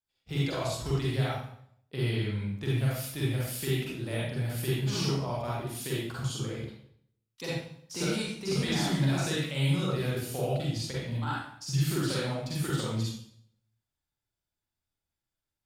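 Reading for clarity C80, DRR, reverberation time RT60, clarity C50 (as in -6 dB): 2.5 dB, -7.0 dB, 0.65 s, -2.5 dB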